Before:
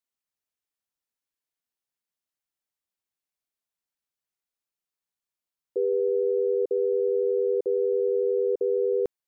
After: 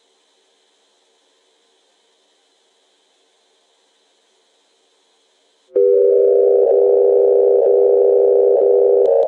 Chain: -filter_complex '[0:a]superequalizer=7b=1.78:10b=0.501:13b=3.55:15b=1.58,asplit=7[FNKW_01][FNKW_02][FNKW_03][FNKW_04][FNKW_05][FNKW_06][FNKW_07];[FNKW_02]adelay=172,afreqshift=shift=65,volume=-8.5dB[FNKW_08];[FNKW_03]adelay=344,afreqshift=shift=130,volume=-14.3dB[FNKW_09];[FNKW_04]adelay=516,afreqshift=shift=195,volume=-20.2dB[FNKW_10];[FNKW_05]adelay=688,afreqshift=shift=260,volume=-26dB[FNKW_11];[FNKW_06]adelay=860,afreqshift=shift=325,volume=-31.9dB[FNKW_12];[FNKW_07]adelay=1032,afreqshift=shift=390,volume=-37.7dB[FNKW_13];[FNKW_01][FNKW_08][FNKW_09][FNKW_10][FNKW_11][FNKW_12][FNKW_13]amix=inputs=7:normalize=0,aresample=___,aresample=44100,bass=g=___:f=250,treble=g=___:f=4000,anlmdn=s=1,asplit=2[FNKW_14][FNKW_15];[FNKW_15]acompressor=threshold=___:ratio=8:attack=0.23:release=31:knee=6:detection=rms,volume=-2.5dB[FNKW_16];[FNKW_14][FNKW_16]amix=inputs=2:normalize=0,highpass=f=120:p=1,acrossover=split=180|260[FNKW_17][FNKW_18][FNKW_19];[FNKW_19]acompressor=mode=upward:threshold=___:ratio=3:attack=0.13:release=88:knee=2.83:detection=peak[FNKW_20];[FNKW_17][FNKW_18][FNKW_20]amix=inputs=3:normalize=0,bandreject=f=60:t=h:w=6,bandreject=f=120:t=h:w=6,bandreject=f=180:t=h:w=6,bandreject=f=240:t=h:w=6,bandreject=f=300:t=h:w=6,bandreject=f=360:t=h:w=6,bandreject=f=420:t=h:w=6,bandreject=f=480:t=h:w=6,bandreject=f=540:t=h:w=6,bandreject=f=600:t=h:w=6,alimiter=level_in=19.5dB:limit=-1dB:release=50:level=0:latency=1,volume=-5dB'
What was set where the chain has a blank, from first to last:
22050, -10, 6, -29dB, -40dB